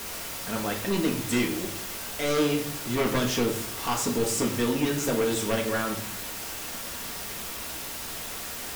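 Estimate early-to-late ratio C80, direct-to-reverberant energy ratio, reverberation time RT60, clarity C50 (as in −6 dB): 12.5 dB, 0.5 dB, 0.60 s, 8.5 dB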